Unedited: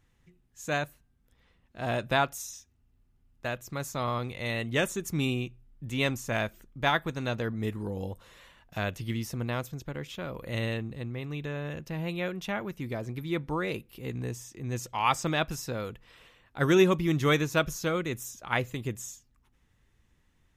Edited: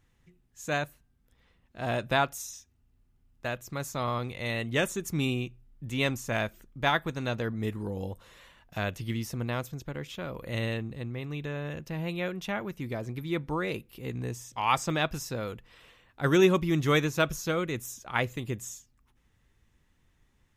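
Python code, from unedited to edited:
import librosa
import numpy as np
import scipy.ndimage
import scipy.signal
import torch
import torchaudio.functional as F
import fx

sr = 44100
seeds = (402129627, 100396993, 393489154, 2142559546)

y = fx.edit(x, sr, fx.cut(start_s=14.52, length_s=0.37), tone=tone)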